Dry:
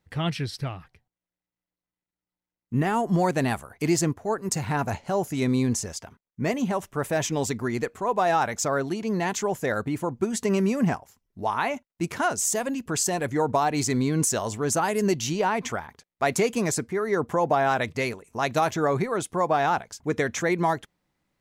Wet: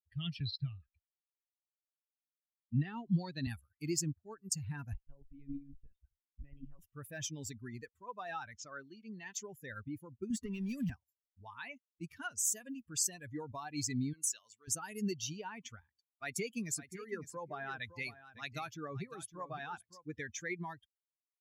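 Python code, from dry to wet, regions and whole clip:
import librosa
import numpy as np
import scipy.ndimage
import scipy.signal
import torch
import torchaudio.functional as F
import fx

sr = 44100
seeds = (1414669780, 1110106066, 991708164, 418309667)

y = fx.chain(x, sr, fx.lowpass(hz=5100.0, slope=12),
    fx.peak_eq(hz=4000.0, db=12.0, octaves=0.24),
    fx.band_squash(depth_pct=40), at=(0.4, 3.47))
y = fx.chain(y, sr, fx.lowpass(hz=2400.0, slope=6),
    fx.level_steps(step_db=11),
    fx.lpc_monotone(seeds[0], pitch_hz=140.0, order=10), at=(4.93, 6.79))
y = fx.chain(y, sr, fx.median_filter(points=5),
    fx.lowpass(hz=8400.0, slope=24),
    fx.low_shelf(hz=240.0, db=-6.0), at=(8.57, 9.35))
y = fx.chain(y, sr, fx.overload_stage(gain_db=21.5),
    fx.band_squash(depth_pct=100), at=(10.3, 10.9))
y = fx.chain(y, sr, fx.highpass(hz=1100.0, slope=6),
    fx.high_shelf(hz=8200.0, db=-4.0), at=(14.13, 14.68))
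y = fx.chain(y, sr, fx.highpass(hz=77.0, slope=12),
    fx.echo_single(ms=558, db=-7.5), at=(15.81, 20.04))
y = fx.bin_expand(y, sr, power=2.0)
y = fx.tone_stack(y, sr, knobs='6-0-2')
y = F.gain(torch.from_numpy(y), 11.0).numpy()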